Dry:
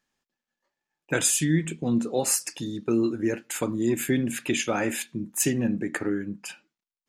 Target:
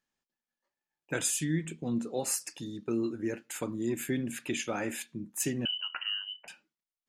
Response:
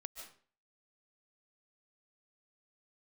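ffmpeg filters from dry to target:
-filter_complex "[0:a]asettb=1/sr,asplit=3[a][b][c];[a]atrim=end=5.654[d];[b]atrim=start=5.65:end=6.48,asetpts=PTS-STARTPTS,afade=t=in:d=0.004:c=qsin,afade=t=out:st=0.826:d=0.004:c=qsin,lowpass=f=2.7k:t=q:w=0.5098,lowpass=f=2.7k:t=q:w=0.6013,lowpass=f=2.7k:t=q:w=0.9,lowpass=f=2.7k:t=q:w=2.563,afreqshift=-3200[e];[c]atrim=start=6.476[f];[d][e]acrossfade=d=0.004:c1=hsin:c2=qsin[g];[g][f]acrossfade=d=0.004:c1=qsin:c2=hsin,volume=-7.5dB"

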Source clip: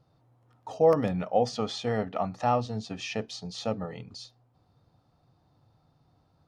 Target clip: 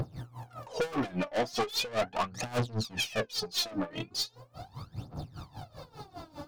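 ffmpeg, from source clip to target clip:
-filter_complex "[0:a]asplit=2[a][b];[b]acompressor=mode=upward:threshold=-28dB:ratio=2.5,volume=2.5dB[c];[a][c]amix=inputs=2:normalize=0,aphaser=in_gain=1:out_gain=1:delay=3.5:decay=0.8:speed=0.39:type=triangular,aeval=exprs='(tanh(20*val(0)+0.3)-tanh(0.3))/20':c=same,lowshelf=f=67:g=-9,bandreject=f=1.9k:w=22,aeval=exprs='val(0)*pow(10,-20*(0.5-0.5*cos(2*PI*5*n/s))/20)':c=same,volume=2.5dB"

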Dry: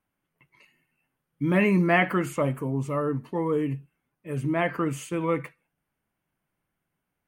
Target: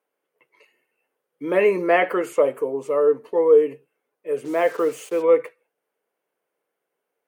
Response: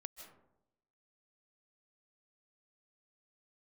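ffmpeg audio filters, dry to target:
-filter_complex "[0:a]asplit=3[a][b][c];[a]afade=t=out:st=4.44:d=0.02[d];[b]acrusher=bits=6:mix=0:aa=0.5,afade=t=in:st=4.44:d=0.02,afade=t=out:st=5.21:d=0.02[e];[c]afade=t=in:st=5.21:d=0.02[f];[d][e][f]amix=inputs=3:normalize=0,highpass=f=460:t=q:w=5.3"

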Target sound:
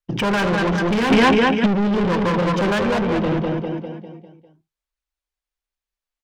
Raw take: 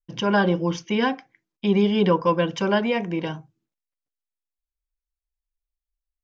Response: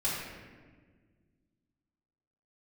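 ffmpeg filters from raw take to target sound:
-filter_complex "[0:a]afwtdn=0.0447,lowshelf=f=250:g=8,acrossover=split=170|3000[a][b][c];[b]acompressor=threshold=-27dB:ratio=4[d];[a][d][c]amix=inputs=3:normalize=0,aecho=1:1:200|400|600|800|1000|1200:0.562|0.259|0.119|0.0547|0.0252|0.0116,flanger=delay=0.3:depth=5.6:regen=76:speed=0.6:shape=triangular,asplit=2[e][f];[f]highpass=f=720:p=1,volume=31dB,asoftclip=type=tanh:threshold=-16.5dB[g];[e][g]amix=inputs=2:normalize=0,lowpass=f=4k:p=1,volume=-6dB,asplit=2[h][i];[1:a]atrim=start_sample=2205,atrim=end_sample=3087[j];[i][j]afir=irnorm=-1:irlink=0,volume=-22dB[k];[h][k]amix=inputs=2:normalize=0,asplit=3[l][m][n];[l]afade=t=out:st=1.1:d=0.02[o];[m]acontrast=89,afade=t=in:st=1.1:d=0.02,afade=t=out:st=1.65:d=0.02[p];[n]afade=t=in:st=1.65:d=0.02[q];[o][p][q]amix=inputs=3:normalize=0,volume=3.5dB"

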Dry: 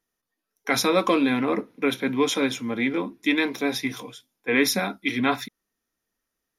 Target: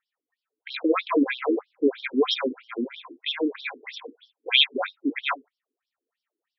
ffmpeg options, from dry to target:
-filter_complex "[0:a]asettb=1/sr,asplit=3[a][b][c];[a]atrim=end=4.024[d];[b]atrim=start=4.02:end=4.81,asetpts=PTS-STARTPTS,afade=t=in:d=0.004:c=qsin,afade=t=out:st=0.786:d=0.004:c=qsin,highshelf=f=2.4k:t=q:w=3:g=9.5[e];[c]atrim=start=4.806[f];[d][e]acrossfade=d=0.004:c1=hsin:c2=qsin[g];[g][f]acrossfade=d=0.004:c1=qsin:c2=hsin,afftfilt=real='re*between(b*sr/1024,310*pow(4100/310,0.5+0.5*sin(2*PI*3.1*pts/sr))/1.41,310*pow(4100/310,0.5+0.5*sin(2*PI*3.1*pts/sr))*1.41)':imag='im*between(b*sr/1024,310*pow(4100/310,0.5+0.5*sin(2*PI*3.1*pts/sr))/1.41,310*pow(4100/310,0.5+0.5*sin(2*PI*3.1*pts/sr))*1.41)':win_size=1024:overlap=0.75,volume=4.5dB"

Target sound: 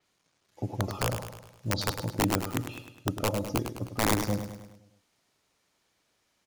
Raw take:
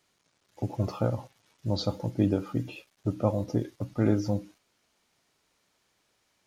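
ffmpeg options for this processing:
-af "aeval=exprs='(mod(5.96*val(0)+1,2)-1)/5.96':c=same,aecho=1:1:103|206|309|412|515|618:0.376|0.195|0.102|0.0528|0.0275|0.0143,adynamicequalizer=threshold=0.00447:dfrequency=6000:dqfactor=0.7:tfrequency=6000:tqfactor=0.7:attack=5:release=100:ratio=0.375:range=3:mode=boostabove:tftype=highshelf,volume=-2dB"

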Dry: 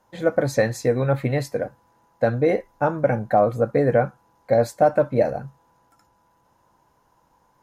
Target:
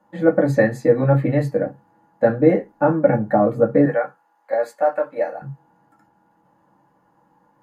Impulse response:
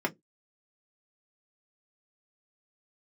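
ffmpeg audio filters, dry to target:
-filter_complex "[0:a]asettb=1/sr,asplit=3[a][b][c];[a]atrim=end=3.854[d];[b]atrim=start=3.85:end=5.42,asetpts=PTS-STARTPTS,afade=t=in:d=0.004:c=qsin,afade=t=out:st=1.566:d=0.004:c=qsin,highpass=810[e];[c]atrim=start=5.416[f];[d][e]acrossfade=d=0.004:c1=hsin:c2=qsin[g];[g][f]acrossfade=d=0.004:c1=qsin:c2=hsin[h];[1:a]atrim=start_sample=2205,asetrate=37926,aresample=44100[i];[h][i]afir=irnorm=-1:irlink=0,volume=-7.5dB"

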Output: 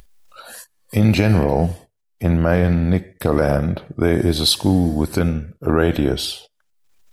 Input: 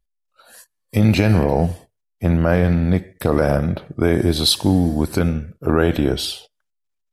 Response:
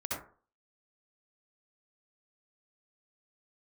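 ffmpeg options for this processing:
-af "acompressor=mode=upward:threshold=-29dB:ratio=2.5"

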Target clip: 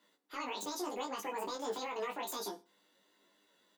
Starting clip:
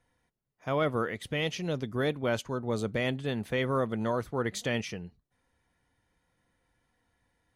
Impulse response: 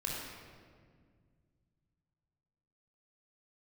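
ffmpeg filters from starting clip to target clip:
-filter_complex "[0:a]highpass=f=120:w=0.5412,highpass=f=120:w=1.3066,acompressor=threshold=-36dB:ratio=10,alimiter=level_in=10dB:limit=-24dB:level=0:latency=1:release=11,volume=-10dB,flanger=delay=19.5:depth=2.4:speed=1.6,asplit=2[a][b];[b]adelay=40,volume=-3dB[c];[a][c]amix=inputs=2:normalize=0,aecho=1:1:98|196|294:0.126|0.0529|0.0222,asetrate=88200,aresample=44100,volume=5.5dB"

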